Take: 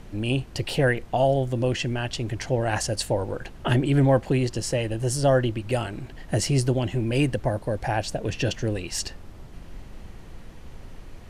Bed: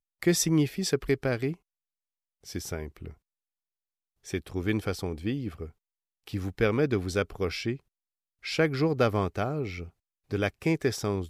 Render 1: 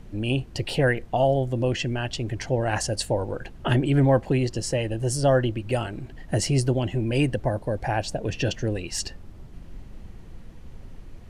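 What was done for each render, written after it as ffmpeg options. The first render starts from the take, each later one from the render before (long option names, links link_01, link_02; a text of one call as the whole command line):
ffmpeg -i in.wav -af "afftdn=noise_reduction=6:noise_floor=-43" out.wav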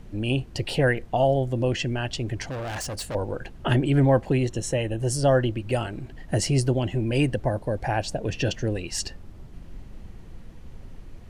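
ffmpeg -i in.wav -filter_complex "[0:a]asettb=1/sr,asplit=3[link_01][link_02][link_03];[link_01]atrim=end=2.494[link_04];[link_02]atrim=start=2.49:end=3.15,asetpts=PTS-STARTPTS,afade=type=in:duration=0.004:curve=qsin,afade=type=out:start_time=0.656:duration=0.004:curve=qsin,volume=29.5dB,asoftclip=hard,volume=-29.5dB[link_05];[link_03]atrim=start=3.146[link_06];[link_04][link_05]acrossfade=duration=0.004:curve1=hsin:curve2=qsin[link_07];[link_07][link_06]acrossfade=duration=0.004:curve1=qsin:curve2=hsin,asettb=1/sr,asplit=3[link_08][link_09][link_10];[link_08]atrim=end=4.464[link_11];[link_09]atrim=start=4.46:end=5.01,asetpts=PTS-STARTPTS,afade=type=in:duration=0.004:curve=qsin,afade=type=out:start_time=0.546:duration=0.004:curve=qsin,asuperstop=centerf=4800:order=4:qfactor=3.8[link_12];[link_10]atrim=start=5.006[link_13];[link_11][link_12]acrossfade=duration=0.004:curve1=hsin:curve2=qsin[link_14];[link_14][link_13]acrossfade=duration=0.004:curve1=qsin:curve2=hsin" out.wav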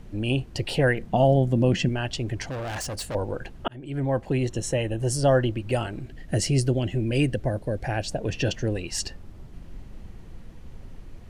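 ffmpeg -i in.wav -filter_complex "[0:a]asettb=1/sr,asplit=3[link_01][link_02][link_03];[link_01]atrim=end=0.984[link_04];[link_02]atrim=start=0.98:end=1.89,asetpts=PTS-STARTPTS,afade=type=in:duration=0.004:curve=qsin,afade=type=out:start_time=0.906:duration=0.004:curve=qsin,equalizer=frequency=190:width_type=o:width=0.77:gain=13[link_05];[link_03]atrim=start=1.886[link_06];[link_04][link_05]acrossfade=duration=0.004:curve1=hsin:curve2=qsin[link_07];[link_07][link_06]acrossfade=duration=0.004:curve1=qsin:curve2=hsin,asettb=1/sr,asplit=3[link_08][link_09][link_10];[link_08]atrim=end=6.024[link_11];[link_09]atrim=start=6.02:end=8.11,asetpts=PTS-STARTPTS,afade=type=in:duration=0.004:curve=qsin,afade=type=out:start_time=2.086:duration=0.004:curve=qsin,equalizer=frequency=930:width_type=o:width=0.76:gain=-8[link_12];[link_10]atrim=start=8.106[link_13];[link_11][link_12]acrossfade=duration=0.004:curve1=hsin:curve2=qsin[link_14];[link_14][link_13]acrossfade=duration=0.004:curve1=qsin:curve2=hsin,asplit=2[link_15][link_16];[link_15]atrim=end=3.68,asetpts=PTS-STARTPTS,afade=type=out:start_time=3.676:duration=0.004:curve=hsin[link_17];[link_16]atrim=start=3.68,asetpts=PTS-STARTPTS,afade=type=in:duration=0.86[link_18];[link_17][link_18]concat=n=2:v=0:a=1" out.wav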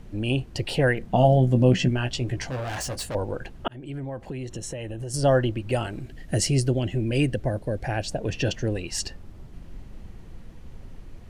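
ffmpeg -i in.wav -filter_complex "[0:a]asettb=1/sr,asplit=3[link_01][link_02][link_03];[link_01]atrim=end=1.084[link_04];[link_02]atrim=start=1.08:end=3.09,asetpts=PTS-STARTPTS,afade=type=in:duration=0.004:curve=qsin,afade=type=out:start_time=2.006:duration=0.004:curve=qsin,asplit=2[link_05][link_06];[link_06]adelay=16,volume=-6dB[link_07];[link_05][link_07]amix=inputs=2:normalize=0,atrim=end_sample=88641[link_08];[link_03]atrim=start=3.086[link_09];[link_04][link_08]acrossfade=duration=0.004:curve1=hsin:curve2=qsin[link_10];[link_10][link_09]acrossfade=duration=0.004:curve1=qsin:curve2=hsin,asettb=1/sr,asplit=3[link_11][link_12][link_13];[link_11]atrim=end=3.774[link_14];[link_12]atrim=start=3.77:end=5.14,asetpts=PTS-STARTPTS,afade=type=in:duration=0.004:curve=qsin,afade=type=out:start_time=1.366:duration=0.004:curve=qsin,acompressor=threshold=-30dB:ratio=6:attack=3.2:release=140:knee=1:detection=peak[link_15];[link_13]atrim=start=5.136[link_16];[link_14][link_15]acrossfade=duration=0.004:curve1=hsin:curve2=qsin[link_17];[link_17][link_16]acrossfade=duration=0.004:curve1=qsin:curve2=hsin,asettb=1/sr,asplit=3[link_18][link_19][link_20];[link_18]atrim=end=5.844[link_21];[link_19]atrim=start=5.84:end=6.55,asetpts=PTS-STARTPTS,afade=type=in:duration=0.004:curve=qsin,afade=type=out:start_time=0.706:duration=0.004:curve=qsin,highshelf=frequency=5000:gain=4.5[link_22];[link_20]atrim=start=6.546[link_23];[link_21][link_22]acrossfade=duration=0.004:curve1=hsin:curve2=qsin[link_24];[link_24][link_23]acrossfade=duration=0.004:curve1=qsin:curve2=hsin" out.wav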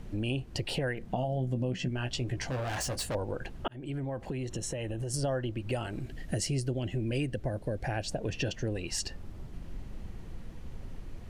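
ffmpeg -i in.wav -af "alimiter=limit=-14dB:level=0:latency=1:release=490,acompressor=threshold=-32dB:ratio=2.5" out.wav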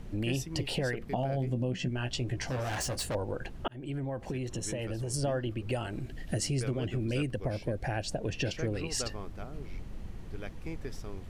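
ffmpeg -i in.wav -i bed.wav -filter_complex "[1:a]volume=-15.5dB[link_01];[0:a][link_01]amix=inputs=2:normalize=0" out.wav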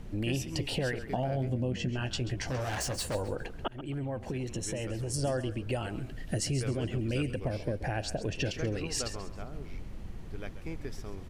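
ffmpeg -i in.wav -filter_complex "[0:a]asplit=4[link_01][link_02][link_03][link_04];[link_02]adelay=134,afreqshift=-32,volume=-13.5dB[link_05];[link_03]adelay=268,afreqshift=-64,volume=-22.6dB[link_06];[link_04]adelay=402,afreqshift=-96,volume=-31.7dB[link_07];[link_01][link_05][link_06][link_07]amix=inputs=4:normalize=0" out.wav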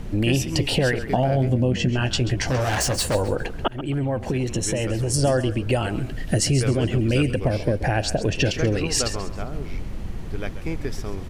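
ffmpeg -i in.wav -af "volume=11dB" out.wav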